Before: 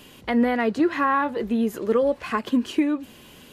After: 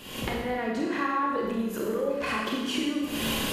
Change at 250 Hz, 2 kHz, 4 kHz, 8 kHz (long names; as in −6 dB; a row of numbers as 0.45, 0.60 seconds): −7.0, −2.5, +6.5, +8.0 decibels